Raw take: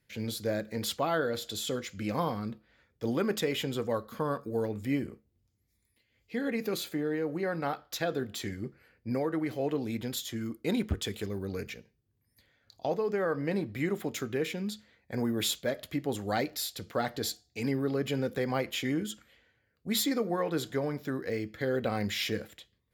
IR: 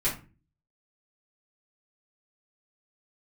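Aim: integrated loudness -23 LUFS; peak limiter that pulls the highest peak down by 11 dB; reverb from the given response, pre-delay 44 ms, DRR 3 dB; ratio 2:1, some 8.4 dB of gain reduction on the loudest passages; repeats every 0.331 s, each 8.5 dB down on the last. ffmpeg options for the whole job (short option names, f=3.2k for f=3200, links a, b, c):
-filter_complex "[0:a]acompressor=threshold=-41dB:ratio=2,alimiter=level_in=10.5dB:limit=-24dB:level=0:latency=1,volume=-10.5dB,aecho=1:1:331|662|993|1324:0.376|0.143|0.0543|0.0206,asplit=2[a][b];[1:a]atrim=start_sample=2205,adelay=44[c];[b][c]afir=irnorm=-1:irlink=0,volume=-11.5dB[d];[a][d]amix=inputs=2:normalize=0,volume=18.5dB"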